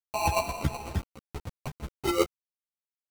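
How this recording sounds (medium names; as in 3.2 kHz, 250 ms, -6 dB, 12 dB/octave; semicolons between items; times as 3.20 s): a quantiser's noise floor 6-bit, dither none; chopped level 8.2 Hz, depth 60%, duty 20%; aliases and images of a low sample rate 1.7 kHz, jitter 0%; a shimmering, thickened sound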